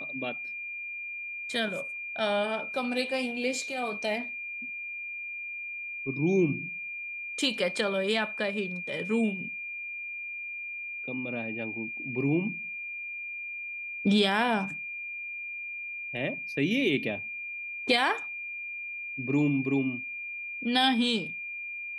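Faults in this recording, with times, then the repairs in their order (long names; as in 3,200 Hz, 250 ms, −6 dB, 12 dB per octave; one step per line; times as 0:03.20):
whistle 2,400 Hz −35 dBFS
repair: notch filter 2,400 Hz, Q 30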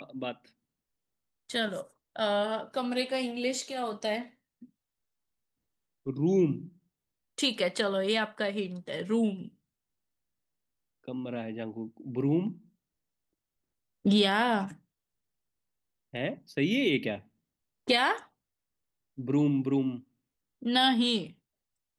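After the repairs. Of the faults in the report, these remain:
none of them is left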